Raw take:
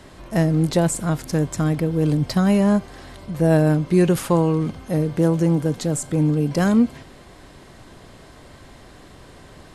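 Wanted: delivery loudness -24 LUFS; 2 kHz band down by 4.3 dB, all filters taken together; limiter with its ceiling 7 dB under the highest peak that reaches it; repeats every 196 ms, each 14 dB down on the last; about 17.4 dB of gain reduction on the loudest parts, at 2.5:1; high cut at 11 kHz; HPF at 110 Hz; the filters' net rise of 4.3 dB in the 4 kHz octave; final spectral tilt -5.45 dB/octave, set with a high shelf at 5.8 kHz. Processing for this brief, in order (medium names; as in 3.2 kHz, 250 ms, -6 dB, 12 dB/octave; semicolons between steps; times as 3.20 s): high-pass 110 Hz; low-pass 11 kHz; peaking EQ 2 kHz -7.5 dB; peaking EQ 4 kHz +4 dB; treble shelf 5.8 kHz +8 dB; compression 2.5:1, threshold -40 dBFS; peak limiter -28 dBFS; feedback delay 196 ms, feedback 20%, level -14 dB; trim +14.5 dB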